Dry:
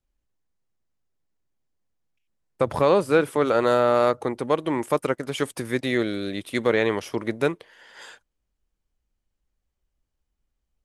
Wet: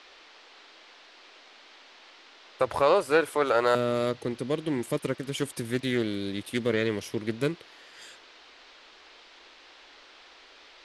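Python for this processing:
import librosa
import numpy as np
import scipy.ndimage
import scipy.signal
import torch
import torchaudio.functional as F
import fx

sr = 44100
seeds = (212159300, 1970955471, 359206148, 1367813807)

y = fx.peak_eq(x, sr, hz=fx.steps((0.0, 170.0), (3.75, 950.0)), db=-14.5, octaves=1.7)
y = fx.dmg_noise_band(y, sr, seeds[0], low_hz=290.0, high_hz=4400.0, level_db=-53.0)
y = fx.doppler_dist(y, sr, depth_ms=0.14)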